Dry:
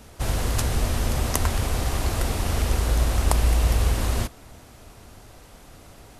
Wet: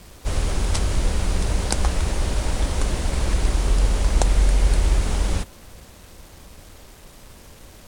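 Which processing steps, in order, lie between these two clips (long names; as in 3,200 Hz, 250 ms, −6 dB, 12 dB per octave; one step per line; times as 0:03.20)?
low-shelf EQ 140 Hz +3.5 dB
bit reduction 8 bits
change of speed 0.786×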